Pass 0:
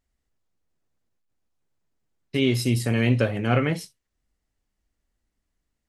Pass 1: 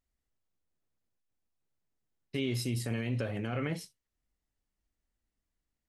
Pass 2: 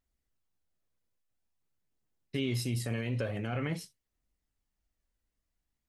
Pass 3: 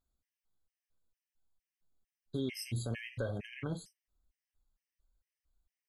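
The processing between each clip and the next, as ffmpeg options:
-af "alimiter=limit=0.158:level=0:latency=1:release=54,volume=0.422"
-af "aphaser=in_gain=1:out_gain=1:delay=2.1:decay=0.22:speed=0.48:type=triangular"
-af "asubboost=boost=3:cutoff=76,afftfilt=real='re*gt(sin(2*PI*2.2*pts/sr)*(1-2*mod(floor(b*sr/1024/1600),2)),0)':imag='im*gt(sin(2*PI*2.2*pts/sr)*(1-2*mod(floor(b*sr/1024/1600),2)),0)':win_size=1024:overlap=0.75,volume=0.841"

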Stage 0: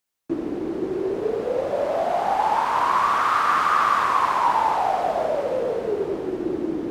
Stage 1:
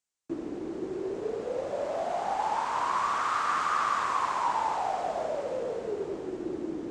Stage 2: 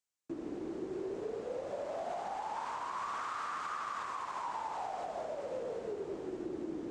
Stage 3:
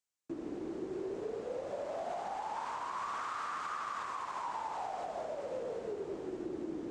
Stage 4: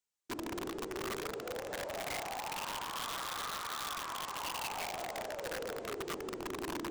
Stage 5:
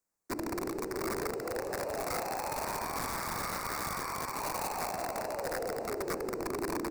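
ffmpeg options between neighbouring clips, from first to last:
-af "lowpass=f=7600:t=q:w=2.4,volume=0.376"
-af "alimiter=level_in=1.26:limit=0.0631:level=0:latency=1:release=149,volume=0.794,volume=0.596"
-af anull
-af "flanger=delay=2:depth=1.1:regen=69:speed=1.1:shape=triangular,aeval=exprs='0.0251*(cos(1*acos(clip(val(0)/0.0251,-1,1)))-cos(1*PI/2))+0.000562*(cos(2*acos(clip(val(0)/0.0251,-1,1)))-cos(2*PI/2))':c=same,aeval=exprs='(mod(75*val(0)+1,2)-1)/75':c=same,volume=1.58"
-filter_complex "[0:a]acrossover=split=230|1000|5200[s0][s1][s2][s3];[s1]aecho=1:1:629:0.562[s4];[s2]acrusher=samples=13:mix=1:aa=0.000001[s5];[s0][s4][s5][s3]amix=inputs=4:normalize=0,volume=1.68"

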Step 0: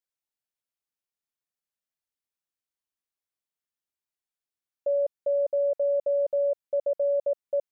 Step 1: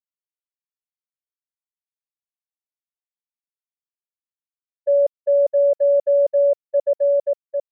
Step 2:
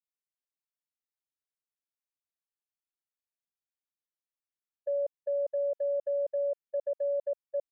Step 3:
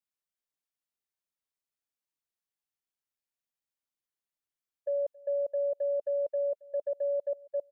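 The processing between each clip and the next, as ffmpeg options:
-af "agate=range=0.0126:threshold=0.0501:ratio=16:detection=peak,dynaudnorm=f=400:g=5:m=2.82"
-af "alimiter=limit=0.119:level=0:latency=1,volume=0.422"
-filter_complex "[0:a]asplit=2[s0][s1];[s1]adelay=273,lowpass=f=2000:p=1,volume=0.0708,asplit=2[s2][s3];[s3]adelay=273,lowpass=f=2000:p=1,volume=0.41,asplit=2[s4][s5];[s5]adelay=273,lowpass=f=2000:p=1,volume=0.41[s6];[s0][s2][s4][s6]amix=inputs=4:normalize=0"

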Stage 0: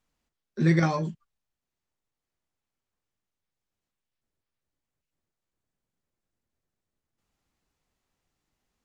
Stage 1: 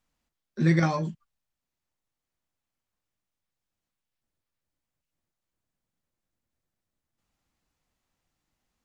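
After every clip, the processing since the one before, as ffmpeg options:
-af "equalizer=f=410:w=6.4:g=-6"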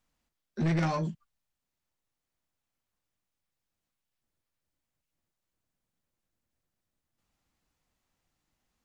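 -af "asoftclip=type=tanh:threshold=0.0668"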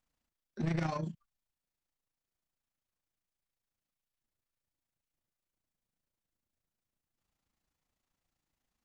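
-af "tremolo=f=28:d=0.621,volume=0.708"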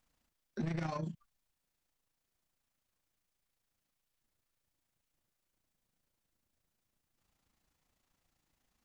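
-af "acompressor=threshold=0.00891:ratio=6,volume=2"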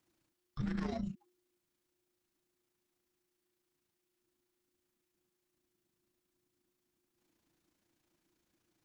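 -af "afreqshift=-360"

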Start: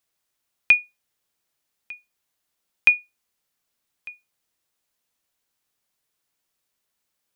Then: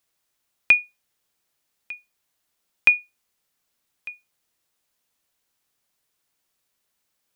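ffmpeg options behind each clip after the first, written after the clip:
-filter_complex "[0:a]acrossover=split=2800[s0][s1];[s1]acompressor=threshold=0.0355:ratio=4:attack=1:release=60[s2];[s0][s2]amix=inputs=2:normalize=0,volume=1.33"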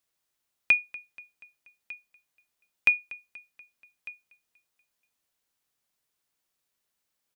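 -af "aecho=1:1:240|480|720|960:0.0944|0.05|0.0265|0.0141,volume=0.531"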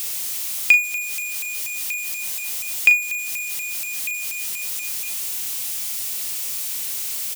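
-filter_complex "[0:a]aeval=exprs='val(0)+0.5*0.02*sgn(val(0))':c=same,aexciter=amount=2.2:drive=7.6:freq=2200,asplit=2[s0][s1];[s1]adelay=38,volume=0.282[s2];[s0][s2]amix=inputs=2:normalize=0"

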